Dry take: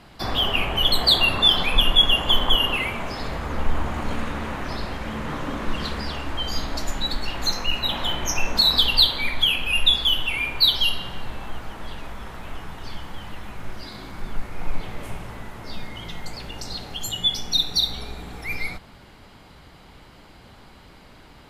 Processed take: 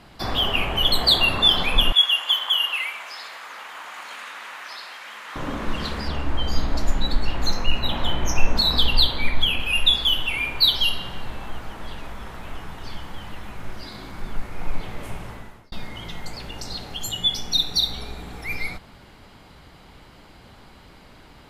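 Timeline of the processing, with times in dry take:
1.92–5.36 s: high-pass 1.3 kHz
6.08–9.60 s: tilt EQ -1.5 dB/octave
15.29–15.72 s: fade out

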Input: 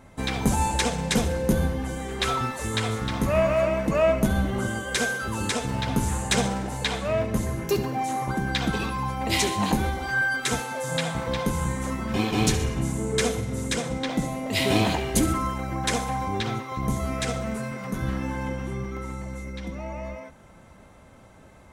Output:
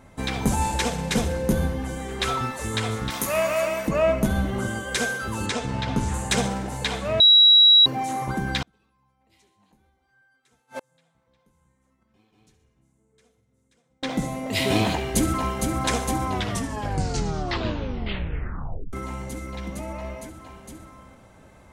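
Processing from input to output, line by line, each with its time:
0.62–1.18 s: CVSD coder 64 kbps
3.10–3.88 s: RIAA curve recording
5.46–6.14 s: low-pass 6.7 kHz
7.20–7.86 s: bleep 3.88 kHz -10 dBFS
8.62–14.03 s: inverted gate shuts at -22 dBFS, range -39 dB
14.92–15.62 s: echo throw 460 ms, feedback 85%, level -5.5 dB
16.26 s: tape stop 2.67 s

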